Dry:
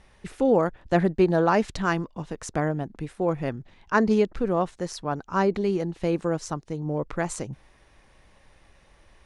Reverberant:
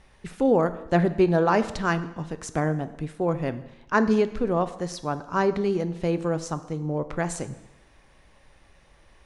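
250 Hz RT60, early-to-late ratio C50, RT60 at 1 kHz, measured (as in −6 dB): 0.90 s, 14.0 dB, 0.90 s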